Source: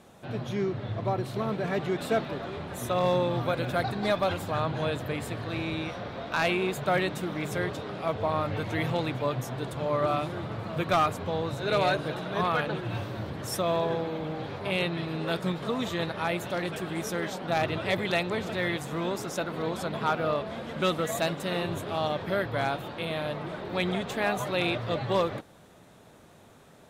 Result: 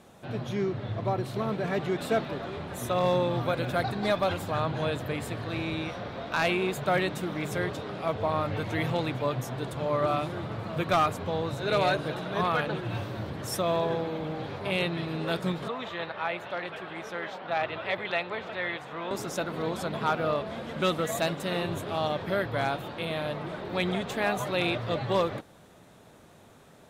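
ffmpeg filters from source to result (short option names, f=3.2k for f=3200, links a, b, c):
-filter_complex "[0:a]asettb=1/sr,asplit=3[a][b][c];[a]atrim=end=15.684[d];[b]atrim=start=15.68:end=19.11,asetpts=PTS-STARTPTS,afade=t=in:d=0.004:c=qsin,afade=t=out:st=3.426:d=0.004:c=qsin,acrossover=split=500 3800:gain=0.251 1 0.1[e][f][g];[e][f][g]amix=inputs=3:normalize=0[h];[c]atrim=start=19.106[i];[d][h]acrossfade=d=0.004:c1=hsin:c2=qsin[j];[j][i]acrossfade=d=0.004:c1=qsin:c2=hsin"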